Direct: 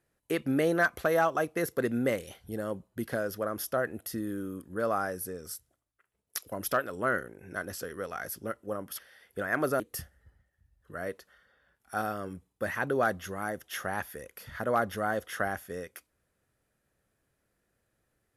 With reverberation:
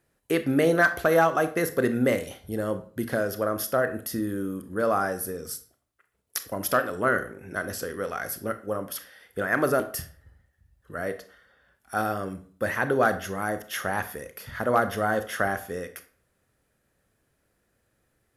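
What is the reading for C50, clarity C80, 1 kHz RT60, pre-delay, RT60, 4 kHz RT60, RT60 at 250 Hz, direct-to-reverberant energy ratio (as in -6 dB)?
13.5 dB, 17.5 dB, 0.45 s, 26 ms, 0.45 s, 0.35 s, 0.55 s, 10.0 dB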